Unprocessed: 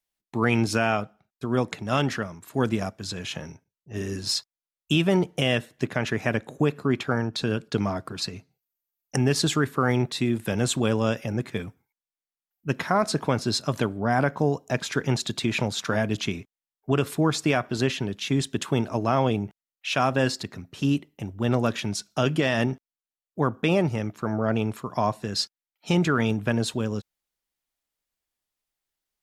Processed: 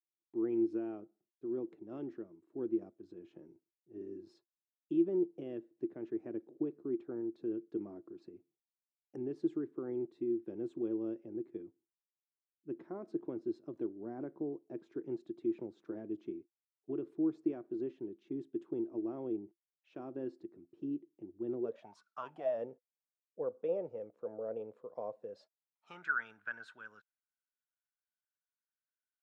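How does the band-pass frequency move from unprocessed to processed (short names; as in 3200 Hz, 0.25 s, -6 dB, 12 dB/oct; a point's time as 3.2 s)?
band-pass, Q 13
21.6 s 340 Hz
22.07 s 1400 Hz
22.6 s 500 Hz
25.3 s 500 Hz
26.03 s 1500 Hz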